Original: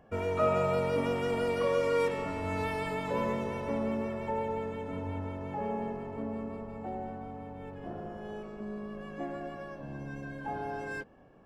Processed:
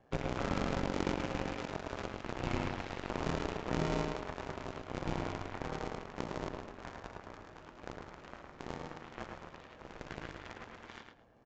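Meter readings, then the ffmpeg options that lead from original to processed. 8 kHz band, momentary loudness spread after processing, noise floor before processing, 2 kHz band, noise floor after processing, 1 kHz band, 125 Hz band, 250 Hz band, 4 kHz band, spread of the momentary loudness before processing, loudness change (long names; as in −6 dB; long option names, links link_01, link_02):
can't be measured, 16 LU, −45 dBFS, −4.0 dB, −56 dBFS, −6.0 dB, −2.5 dB, −4.0 dB, +0.5 dB, 13 LU, −5.5 dB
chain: -filter_complex "[0:a]acrossover=split=280[link_01][link_02];[link_01]acrusher=samples=41:mix=1:aa=0.000001[link_03];[link_02]acompressor=threshold=-42dB:ratio=10[link_04];[link_03][link_04]amix=inputs=2:normalize=0,aeval=exprs='val(0)*sin(2*PI*62*n/s)':channel_layout=same,aeval=exprs='0.0531*(cos(1*acos(clip(val(0)/0.0531,-1,1)))-cos(1*PI/2))+0.00075*(cos(5*acos(clip(val(0)/0.0531,-1,1)))-cos(5*PI/2))+0.0106*(cos(7*acos(clip(val(0)/0.0531,-1,1)))-cos(7*PI/2))':channel_layout=same,asplit=2[link_05][link_06];[link_06]adelay=108,lowpass=frequency=3800:poles=1,volume=-4dB,asplit=2[link_07][link_08];[link_08]adelay=108,lowpass=frequency=3800:poles=1,volume=0.25,asplit=2[link_09][link_10];[link_10]adelay=108,lowpass=frequency=3800:poles=1,volume=0.25[link_11];[link_07][link_09][link_11]amix=inputs=3:normalize=0[link_12];[link_05][link_12]amix=inputs=2:normalize=0,aresample=16000,aresample=44100,volume=6dB"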